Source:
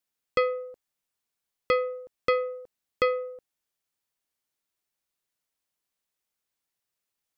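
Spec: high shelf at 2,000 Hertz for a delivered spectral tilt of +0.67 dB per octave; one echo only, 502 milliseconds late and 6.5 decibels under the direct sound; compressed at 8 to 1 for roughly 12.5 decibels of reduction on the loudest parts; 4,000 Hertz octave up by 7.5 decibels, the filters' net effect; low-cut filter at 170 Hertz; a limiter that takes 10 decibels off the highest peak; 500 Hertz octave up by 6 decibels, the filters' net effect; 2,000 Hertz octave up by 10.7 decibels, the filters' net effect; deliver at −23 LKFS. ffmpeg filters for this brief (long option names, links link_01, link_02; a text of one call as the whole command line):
ffmpeg -i in.wav -af "highpass=170,equalizer=frequency=500:width_type=o:gain=5.5,highshelf=frequency=2000:gain=3.5,equalizer=frequency=2000:width_type=o:gain=8.5,equalizer=frequency=4000:width_type=o:gain=3,acompressor=threshold=-25dB:ratio=8,alimiter=limit=-18dB:level=0:latency=1,aecho=1:1:502:0.473,volume=13dB" out.wav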